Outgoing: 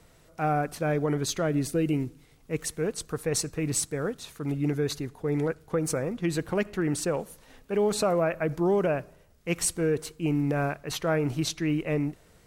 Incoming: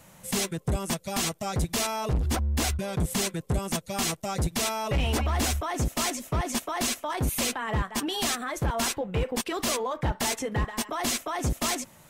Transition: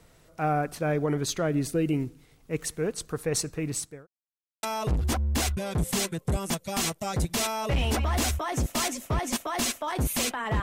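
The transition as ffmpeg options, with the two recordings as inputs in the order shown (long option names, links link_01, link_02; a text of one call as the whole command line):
ffmpeg -i cue0.wav -i cue1.wav -filter_complex "[0:a]apad=whole_dur=10.62,atrim=end=10.62,asplit=2[link_01][link_02];[link_01]atrim=end=4.07,asetpts=PTS-STARTPTS,afade=type=out:start_time=3.36:duration=0.71:curve=qsin[link_03];[link_02]atrim=start=4.07:end=4.63,asetpts=PTS-STARTPTS,volume=0[link_04];[1:a]atrim=start=1.85:end=7.84,asetpts=PTS-STARTPTS,afade=type=in:duration=0.004:curve=hsin[link_05];[link_03][link_04][link_05]concat=n=3:v=0:a=1" out.wav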